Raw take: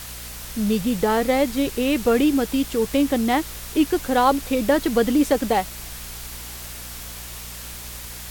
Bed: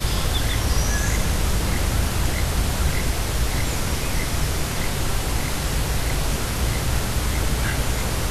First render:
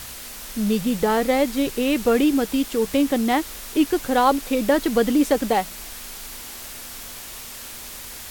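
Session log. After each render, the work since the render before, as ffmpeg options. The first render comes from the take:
ffmpeg -i in.wav -af "bandreject=frequency=60:width_type=h:width=4,bandreject=frequency=120:width_type=h:width=4,bandreject=frequency=180:width_type=h:width=4" out.wav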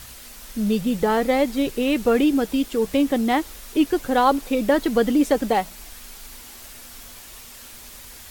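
ffmpeg -i in.wav -af "afftdn=noise_reduction=6:noise_floor=-37" out.wav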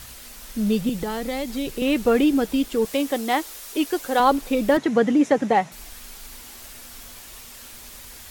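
ffmpeg -i in.wav -filter_complex "[0:a]asettb=1/sr,asplit=3[link_01][link_02][link_03];[link_01]atrim=end=0.894[link_04];[link_02]atrim=start=0.89:end=1.82,asetpts=PTS-STARTPTS,afade=type=in:duration=0.004:curve=qsin,afade=type=out:start_time=0.926:duration=0.004:curve=qsin,acrossover=split=160|3000[link_05][link_06][link_07];[link_06]acompressor=threshold=-25dB:ratio=6:attack=3.2:release=140:knee=2.83:detection=peak[link_08];[link_05][link_08][link_07]amix=inputs=3:normalize=0[link_09];[link_03]atrim=start=1.816[link_10];[link_04][link_09]acrossfade=duration=0.004:curve1=hsin:curve2=qsin[link_11];[link_11][link_10]acrossfade=duration=0.004:curve1=qsin:curve2=hsin,asettb=1/sr,asplit=3[link_12][link_13][link_14];[link_12]atrim=end=2.854[link_15];[link_13]atrim=start=2.85:end=4.2,asetpts=PTS-STARTPTS,afade=type=in:duration=0.004:curve=qsin,afade=type=out:start_time=1.346:duration=0.004:curve=qsin,bass=frequency=250:gain=-14,treble=frequency=4000:gain=4[link_16];[link_14]atrim=start=4.196[link_17];[link_15][link_16]acrossfade=duration=0.004:curve1=hsin:curve2=qsin[link_18];[link_18][link_17]acrossfade=duration=0.004:curve1=qsin:curve2=hsin,asettb=1/sr,asplit=3[link_19][link_20][link_21];[link_19]atrim=end=4.774[link_22];[link_20]atrim=start=4.77:end=5.72,asetpts=PTS-STARTPTS,afade=type=in:duration=0.004:curve=qsin,afade=type=out:start_time=0.946:duration=0.004:curve=qsin,highpass=frequency=100:width=0.5412,highpass=frequency=100:width=1.3066,equalizer=frequency=150:width_type=q:width=4:gain=9,equalizer=frequency=830:width_type=q:width=4:gain=3,equalizer=frequency=1900:width_type=q:width=4:gain=4,equalizer=frequency=3200:width_type=q:width=4:gain=-4,equalizer=frequency=4600:width_type=q:width=4:gain=-8,equalizer=frequency=8400:width_type=q:width=4:gain=-9,lowpass=frequency=8700:width=0.5412,lowpass=frequency=8700:width=1.3066[link_23];[link_21]atrim=start=5.716[link_24];[link_22][link_23]acrossfade=duration=0.004:curve1=hsin:curve2=qsin[link_25];[link_25][link_24]acrossfade=duration=0.004:curve1=qsin:curve2=hsin" out.wav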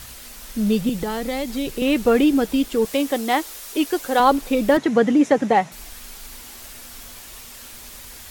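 ffmpeg -i in.wav -af "volume=2dB" out.wav

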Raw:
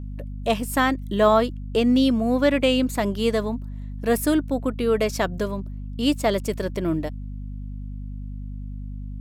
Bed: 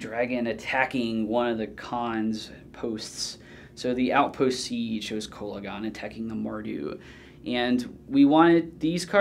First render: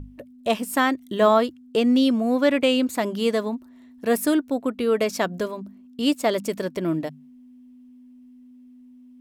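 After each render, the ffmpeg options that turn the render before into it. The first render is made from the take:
ffmpeg -i in.wav -af "bandreject=frequency=50:width_type=h:width=6,bandreject=frequency=100:width_type=h:width=6,bandreject=frequency=150:width_type=h:width=6,bandreject=frequency=200:width_type=h:width=6" out.wav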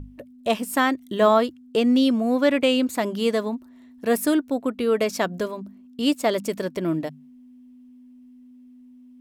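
ffmpeg -i in.wav -af anull out.wav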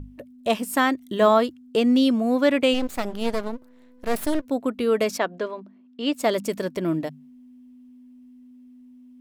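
ffmpeg -i in.wav -filter_complex "[0:a]asplit=3[link_01][link_02][link_03];[link_01]afade=type=out:start_time=2.73:duration=0.02[link_04];[link_02]aeval=exprs='max(val(0),0)':channel_layout=same,afade=type=in:start_time=2.73:duration=0.02,afade=type=out:start_time=4.44:duration=0.02[link_05];[link_03]afade=type=in:start_time=4.44:duration=0.02[link_06];[link_04][link_05][link_06]amix=inputs=3:normalize=0,asplit=3[link_07][link_08][link_09];[link_07]afade=type=out:start_time=5.17:duration=0.02[link_10];[link_08]highpass=310,lowpass=3400,afade=type=in:start_time=5.17:duration=0.02,afade=type=out:start_time=6.13:duration=0.02[link_11];[link_09]afade=type=in:start_time=6.13:duration=0.02[link_12];[link_10][link_11][link_12]amix=inputs=3:normalize=0" out.wav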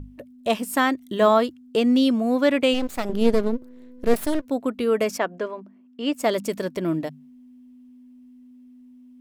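ffmpeg -i in.wav -filter_complex "[0:a]asettb=1/sr,asplit=3[link_01][link_02][link_03];[link_01]atrim=end=3.094[link_04];[link_02]atrim=start=3.09:end=4.14,asetpts=PTS-STARTPTS,afade=type=in:duration=0.004:curve=qsin,afade=type=out:start_time=1.046:duration=0.004:curve=qsin,lowshelf=frequency=570:width_type=q:width=1.5:gain=7[link_05];[link_03]atrim=start=4.136[link_06];[link_04][link_05]acrossfade=duration=0.004:curve1=hsin:curve2=qsin[link_07];[link_07][link_06]acrossfade=duration=0.004:curve1=qsin:curve2=hsin,asettb=1/sr,asplit=3[link_08][link_09][link_10];[link_08]atrim=end=4.844[link_11];[link_09]atrim=start=4.84:end=6.26,asetpts=PTS-STARTPTS,afade=type=in:duration=0.004:curve=qsin,afade=type=out:start_time=1.416:duration=0.004:curve=qsin,equalizer=frequency=3900:width=3.5:gain=-8[link_12];[link_10]atrim=start=6.256[link_13];[link_11][link_12]acrossfade=duration=0.004:curve1=hsin:curve2=qsin[link_14];[link_14][link_13]acrossfade=duration=0.004:curve1=qsin:curve2=hsin" out.wav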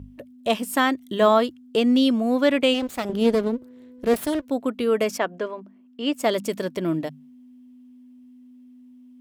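ffmpeg -i in.wav -af "highpass=55,equalizer=frequency=3200:width_type=o:width=0.36:gain=3" out.wav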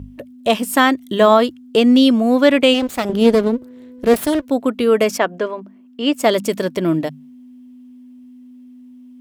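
ffmpeg -i in.wav -af "volume=7dB,alimiter=limit=-1dB:level=0:latency=1" out.wav

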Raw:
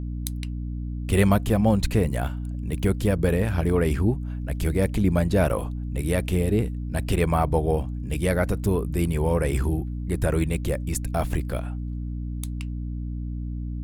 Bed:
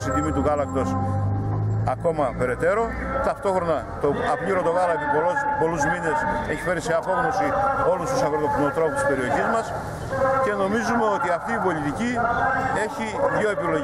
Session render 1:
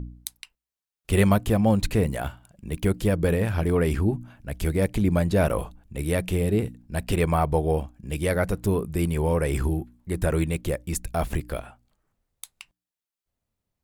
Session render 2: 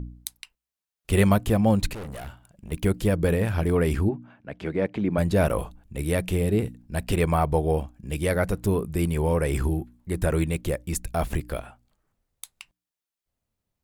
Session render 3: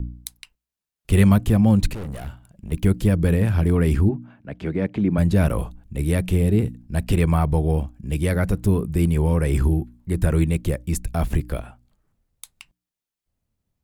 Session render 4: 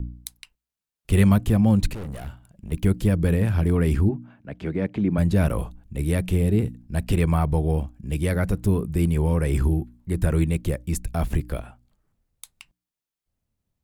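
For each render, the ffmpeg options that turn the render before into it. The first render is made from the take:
ffmpeg -i in.wav -af "bandreject=frequency=60:width_type=h:width=4,bandreject=frequency=120:width_type=h:width=4,bandreject=frequency=180:width_type=h:width=4,bandreject=frequency=240:width_type=h:width=4,bandreject=frequency=300:width_type=h:width=4" out.wav
ffmpeg -i in.wav -filter_complex "[0:a]asettb=1/sr,asplit=3[link_01][link_02][link_03];[link_01]atrim=end=1.934[link_04];[link_02]atrim=start=1.93:end=2.72,asetpts=PTS-STARTPTS,afade=type=in:duration=0.004:curve=qsin,afade=type=out:start_time=0.786:duration=0.004:curve=qsin,aeval=exprs='(tanh(50.1*val(0)+0.4)-tanh(0.4))/50.1':channel_layout=same[link_05];[link_03]atrim=start=2.716[link_06];[link_04][link_05]acrossfade=duration=0.004:curve1=hsin:curve2=qsin[link_07];[link_07][link_06]acrossfade=duration=0.004:curve1=qsin:curve2=hsin,asplit=3[link_08][link_09][link_10];[link_08]afade=type=out:start_time=4.08:duration=0.02[link_11];[link_09]highpass=190,lowpass=2600,afade=type=in:start_time=4.08:duration=0.02,afade=type=out:start_time=5.17:duration=0.02[link_12];[link_10]afade=type=in:start_time=5.17:duration=0.02[link_13];[link_11][link_12][link_13]amix=inputs=3:normalize=0" out.wav
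ffmpeg -i in.wav -filter_complex "[0:a]acrossover=split=300|820|7400[link_01][link_02][link_03][link_04];[link_01]acontrast=72[link_05];[link_02]alimiter=level_in=1.5dB:limit=-24dB:level=0:latency=1,volume=-1.5dB[link_06];[link_05][link_06][link_03][link_04]amix=inputs=4:normalize=0" out.wav
ffmpeg -i in.wav -af "volume=-2dB" out.wav

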